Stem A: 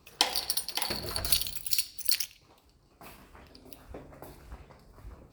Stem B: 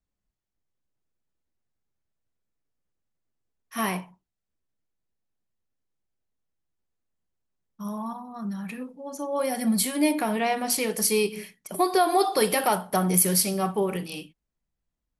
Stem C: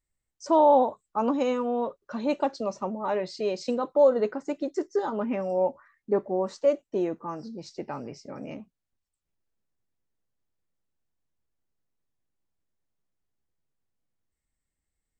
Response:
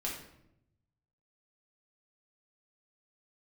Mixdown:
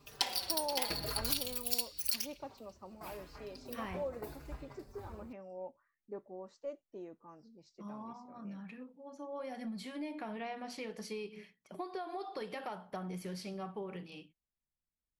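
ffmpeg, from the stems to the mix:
-filter_complex "[0:a]acompressor=threshold=0.0224:ratio=2,asplit=2[s0][s1];[s1]adelay=4.5,afreqshift=-0.86[s2];[s0][s2]amix=inputs=2:normalize=1,volume=1.33[s3];[1:a]lowpass=3900,acompressor=threshold=0.0562:ratio=6,volume=0.224[s4];[2:a]volume=0.1[s5];[s3][s4][s5]amix=inputs=3:normalize=0,equalizer=f=8700:t=o:w=0.2:g=-3.5,aeval=exprs='0.237*(cos(1*acos(clip(val(0)/0.237,-1,1)))-cos(1*PI/2))+0.00299*(cos(6*acos(clip(val(0)/0.237,-1,1)))-cos(6*PI/2))':c=same"

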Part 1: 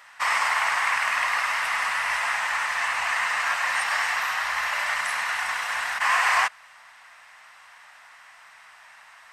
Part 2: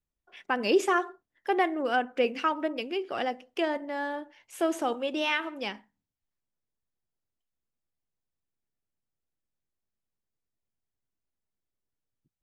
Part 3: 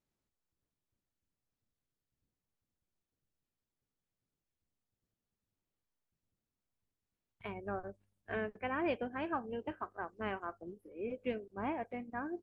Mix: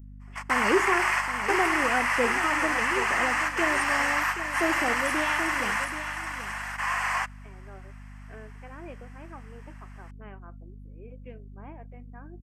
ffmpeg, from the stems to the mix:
-filter_complex "[0:a]bandreject=f=3700:w=18,volume=0.891,asplit=2[s0][s1];[s1]volume=0.531[s2];[1:a]lowshelf=f=200:g=10.5,volume=0.708,asplit=3[s3][s4][s5];[s4]volume=0.282[s6];[2:a]volume=0.355[s7];[s5]apad=whole_len=411442[s8];[s0][s8]sidechaingate=range=0.0141:threshold=0.00355:ratio=16:detection=peak[s9];[s2][s6]amix=inputs=2:normalize=0,aecho=0:1:779:1[s10];[s9][s3][s7][s10]amix=inputs=4:normalize=0,equalizer=f=3900:w=2.8:g=-9.5,aeval=exprs='val(0)+0.00708*(sin(2*PI*50*n/s)+sin(2*PI*2*50*n/s)/2+sin(2*PI*3*50*n/s)/3+sin(2*PI*4*50*n/s)/4+sin(2*PI*5*50*n/s)/5)':c=same"

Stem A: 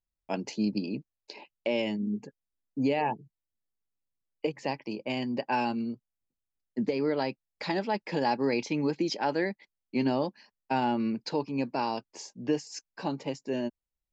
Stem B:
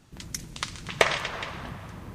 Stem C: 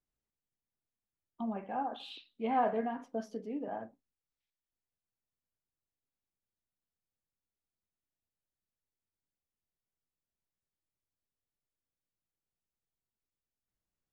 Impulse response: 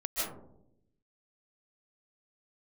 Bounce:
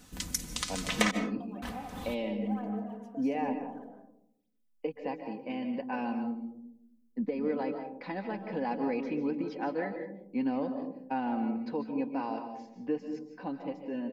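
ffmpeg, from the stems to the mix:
-filter_complex "[0:a]lowpass=2100,adelay=400,volume=0.376,asplit=2[s0][s1];[s1]volume=0.335[s2];[1:a]volume=0.944,asplit=3[s3][s4][s5];[s3]atrim=end=1.11,asetpts=PTS-STARTPTS,afade=t=out:st=1.106:d=0.004:c=hsin[s6];[s4]atrim=start=1.11:end=1.62,asetpts=PTS-STARTPTS,volume=0[s7];[s5]atrim=start=1.62,asetpts=PTS-STARTPTS,afade=t=in:d=0.004:c=hsin[s8];[s6][s7][s8]concat=n=3:v=0:a=1,asplit=2[s9][s10];[s10]volume=0.0841[s11];[2:a]aphaser=in_gain=1:out_gain=1:delay=2.9:decay=0.62:speed=1.1:type=sinusoidal,acompressor=threshold=0.0126:ratio=2.5,volume=0.282,asplit=3[s12][s13][s14];[s13]volume=0.398[s15];[s14]apad=whole_len=94489[s16];[s9][s16]sidechaincompress=threshold=0.00126:ratio=4:attack=16:release=156[s17];[s17][s12]amix=inputs=2:normalize=0,highshelf=f=5400:g=11,alimiter=limit=0.211:level=0:latency=1:release=181,volume=1[s18];[3:a]atrim=start_sample=2205[s19];[s2][s11][s15]amix=inputs=3:normalize=0[s20];[s20][s19]afir=irnorm=-1:irlink=0[s21];[s0][s18][s21]amix=inputs=3:normalize=0,aecho=1:1:4:0.66"

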